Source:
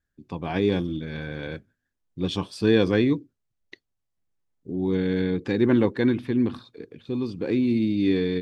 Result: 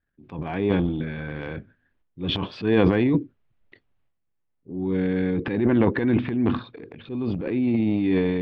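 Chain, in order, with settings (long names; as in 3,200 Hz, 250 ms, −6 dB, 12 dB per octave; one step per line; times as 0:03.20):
low-pass filter 3,000 Hz 24 dB per octave
transient designer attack −6 dB, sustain +12 dB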